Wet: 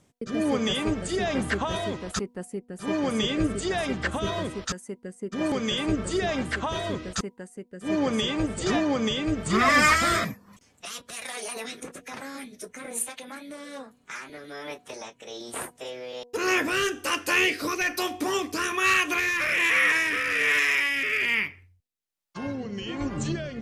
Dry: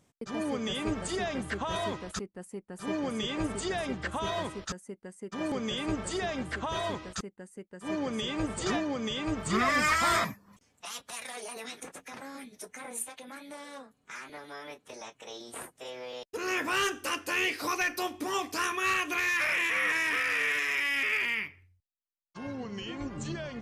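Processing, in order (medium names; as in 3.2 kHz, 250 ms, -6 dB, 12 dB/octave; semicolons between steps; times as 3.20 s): rotary cabinet horn 1.2 Hz; de-hum 242.7 Hz, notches 4; trim +8 dB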